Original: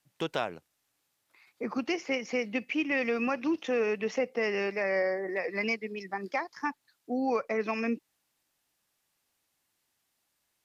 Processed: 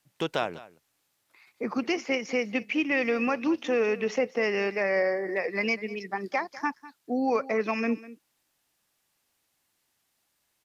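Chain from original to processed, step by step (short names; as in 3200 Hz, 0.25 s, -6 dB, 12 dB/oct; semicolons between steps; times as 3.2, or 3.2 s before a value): echo 0.199 s -18 dB; gain +3 dB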